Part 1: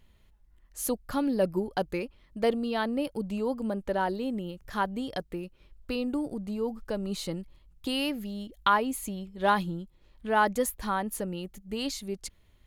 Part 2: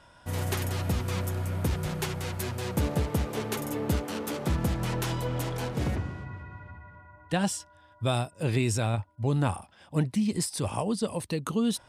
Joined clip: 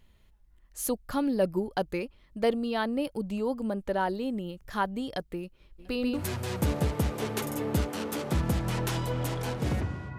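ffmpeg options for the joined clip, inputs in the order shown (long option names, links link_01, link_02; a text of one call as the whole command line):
ffmpeg -i cue0.wav -i cue1.wav -filter_complex "[0:a]asplit=3[link_01][link_02][link_03];[link_01]afade=type=out:start_time=5.78:duration=0.02[link_04];[link_02]aecho=1:1:138|276|414|552|690|828:0.631|0.315|0.158|0.0789|0.0394|0.0197,afade=type=in:start_time=5.78:duration=0.02,afade=type=out:start_time=6.23:duration=0.02[link_05];[link_03]afade=type=in:start_time=6.23:duration=0.02[link_06];[link_04][link_05][link_06]amix=inputs=3:normalize=0,apad=whole_dur=10.18,atrim=end=10.18,atrim=end=6.23,asetpts=PTS-STARTPTS[link_07];[1:a]atrim=start=2.28:end=6.33,asetpts=PTS-STARTPTS[link_08];[link_07][link_08]acrossfade=duration=0.1:curve1=tri:curve2=tri" out.wav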